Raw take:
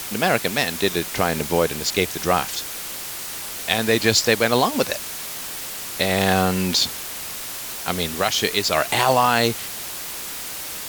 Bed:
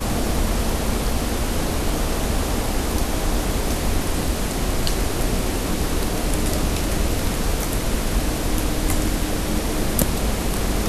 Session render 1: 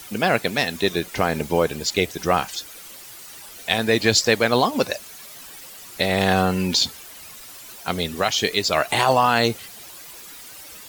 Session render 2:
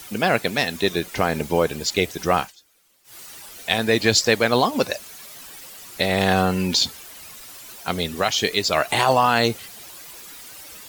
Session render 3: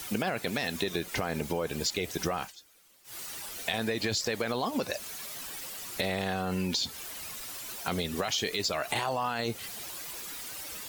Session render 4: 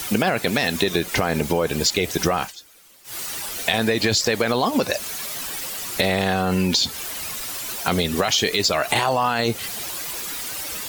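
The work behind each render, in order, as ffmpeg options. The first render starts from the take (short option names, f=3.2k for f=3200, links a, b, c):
-af "afftdn=nr=12:nf=-32"
-filter_complex "[0:a]asplit=3[a][b][c];[a]atrim=end=2.53,asetpts=PTS-STARTPTS,afade=t=out:st=2.4:d=0.13:silence=0.0891251[d];[b]atrim=start=2.53:end=3.04,asetpts=PTS-STARTPTS,volume=-21dB[e];[c]atrim=start=3.04,asetpts=PTS-STARTPTS,afade=t=in:d=0.13:silence=0.0891251[f];[d][e][f]concat=n=3:v=0:a=1"
-af "alimiter=limit=-12dB:level=0:latency=1:release=18,acompressor=threshold=-27dB:ratio=6"
-af "volume=10.5dB"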